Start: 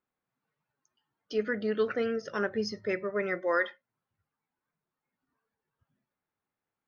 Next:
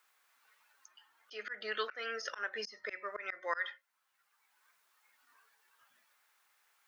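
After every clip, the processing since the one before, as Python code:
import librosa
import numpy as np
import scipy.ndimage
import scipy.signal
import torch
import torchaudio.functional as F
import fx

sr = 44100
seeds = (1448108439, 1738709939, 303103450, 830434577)

y = scipy.signal.sosfilt(scipy.signal.butter(2, 1300.0, 'highpass', fs=sr, output='sos'), x)
y = fx.auto_swell(y, sr, attack_ms=279.0)
y = fx.band_squash(y, sr, depth_pct=40)
y = y * librosa.db_to_amplitude(8.5)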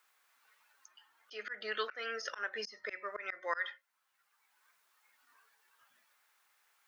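y = x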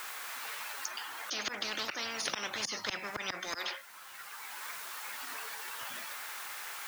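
y = fx.spectral_comp(x, sr, ratio=10.0)
y = y * librosa.db_to_amplitude(4.0)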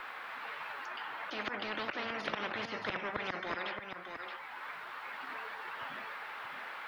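y = fx.air_absorb(x, sr, metres=460.0)
y = y + 10.0 ** (-7.0 / 20.0) * np.pad(y, (int(623 * sr / 1000.0), 0))[:len(y)]
y = y * librosa.db_to_amplitude(4.0)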